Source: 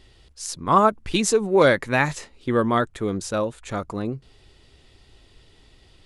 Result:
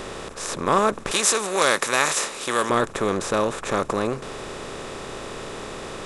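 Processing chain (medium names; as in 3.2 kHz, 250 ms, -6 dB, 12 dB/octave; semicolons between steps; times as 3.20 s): spectral levelling over time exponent 0.4; 1.11–2.70 s: tilt EQ +3.5 dB/octave; trim -6.5 dB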